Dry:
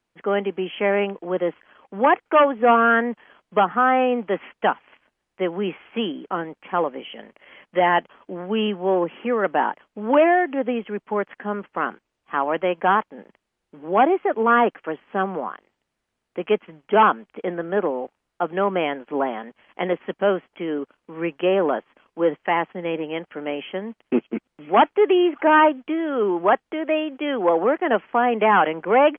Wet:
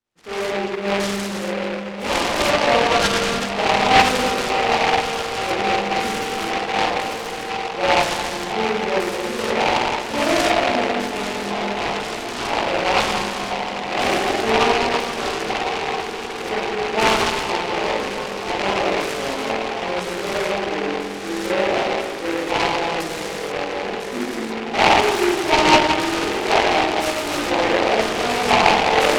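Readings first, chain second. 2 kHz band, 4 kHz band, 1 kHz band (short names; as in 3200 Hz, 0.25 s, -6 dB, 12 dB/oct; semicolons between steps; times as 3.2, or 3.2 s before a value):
+5.0 dB, n/a, +1.5 dB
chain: swelling echo 0.16 s, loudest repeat 8, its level -17.5 dB; spring tank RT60 2.4 s, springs 45/54 ms, chirp 75 ms, DRR -9.5 dB; LFO low-pass square 1 Hz 880–2600 Hz; chorus 0.4 Hz, delay 17 ms, depth 3.9 ms; noise-modulated delay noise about 1500 Hz, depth 0.15 ms; gain -9.5 dB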